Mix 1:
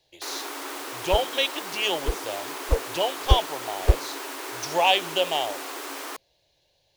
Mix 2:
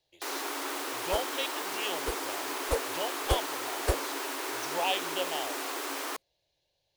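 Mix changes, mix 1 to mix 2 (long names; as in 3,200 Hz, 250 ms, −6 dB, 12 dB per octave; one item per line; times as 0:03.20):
speech −10.0 dB
second sound: add spectral tilt +3 dB per octave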